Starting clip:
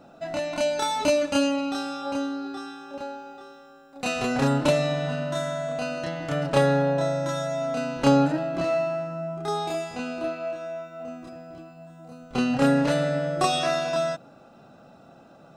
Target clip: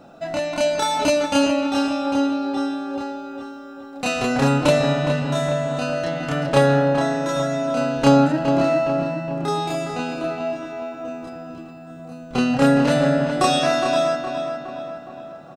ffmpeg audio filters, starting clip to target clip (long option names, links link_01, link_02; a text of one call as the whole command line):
ffmpeg -i in.wav -filter_complex "[0:a]asplit=2[link_01][link_02];[link_02]adelay=414,lowpass=frequency=3200:poles=1,volume=-7dB,asplit=2[link_03][link_04];[link_04]adelay=414,lowpass=frequency=3200:poles=1,volume=0.54,asplit=2[link_05][link_06];[link_06]adelay=414,lowpass=frequency=3200:poles=1,volume=0.54,asplit=2[link_07][link_08];[link_08]adelay=414,lowpass=frequency=3200:poles=1,volume=0.54,asplit=2[link_09][link_10];[link_10]adelay=414,lowpass=frequency=3200:poles=1,volume=0.54,asplit=2[link_11][link_12];[link_12]adelay=414,lowpass=frequency=3200:poles=1,volume=0.54,asplit=2[link_13][link_14];[link_14]adelay=414,lowpass=frequency=3200:poles=1,volume=0.54[link_15];[link_01][link_03][link_05][link_07][link_09][link_11][link_13][link_15]amix=inputs=8:normalize=0,volume=4.5dB" out.wav